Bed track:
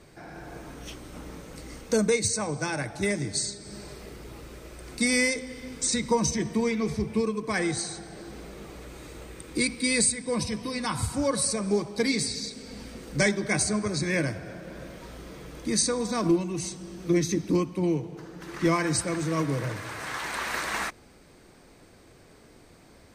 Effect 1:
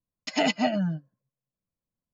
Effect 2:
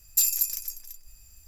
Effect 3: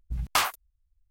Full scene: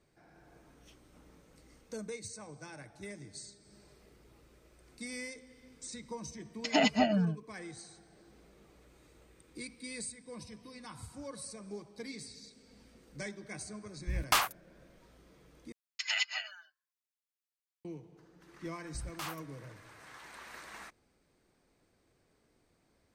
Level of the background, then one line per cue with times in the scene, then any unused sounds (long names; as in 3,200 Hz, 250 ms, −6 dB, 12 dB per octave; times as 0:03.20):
bed track −18.5 dB
0:06.37: mix in 1 −2.5 dB
0:13.97: mix in 3 −3 dB
0:15.72: overwrite with 1 −2 dB + high-pass filter 1,400 Hz 24 dB per octave
0:18.84: mix in 3 −10.5 dB + brickwall limiter −23 dBFS
not used: 2